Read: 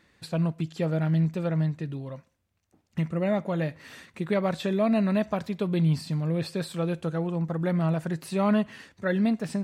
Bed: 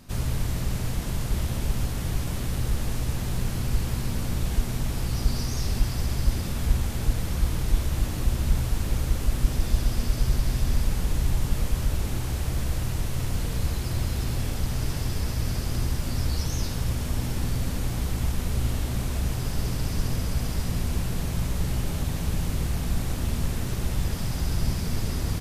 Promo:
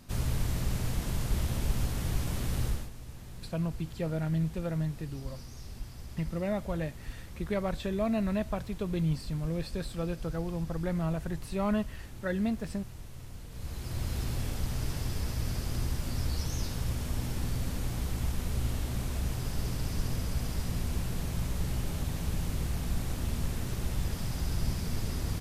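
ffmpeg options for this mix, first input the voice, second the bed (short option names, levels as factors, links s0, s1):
-filter_complex "[0:a]adelay=3200,volume=0.501[s0];[1:a]volume=2.66,afade=t=out:st=2.64:d=0.26:silence=0.199526,afade=t=in:st=13.5:d=0.65:silence=0.251189[s1];[s0][s1]amix=inputs=2:normalize=0"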